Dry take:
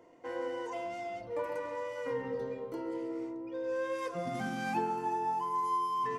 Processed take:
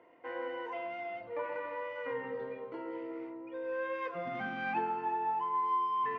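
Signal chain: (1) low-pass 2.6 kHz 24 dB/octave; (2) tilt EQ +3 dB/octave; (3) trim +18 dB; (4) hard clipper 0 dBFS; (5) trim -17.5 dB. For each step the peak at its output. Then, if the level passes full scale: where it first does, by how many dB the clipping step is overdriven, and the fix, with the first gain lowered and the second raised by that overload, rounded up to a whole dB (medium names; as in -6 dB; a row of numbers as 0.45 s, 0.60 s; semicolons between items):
-20.5 dBFS, -23.0 dBFS, -5.0 dBFS, -5.0 dBFS, -22.5 dBFS; nothing clips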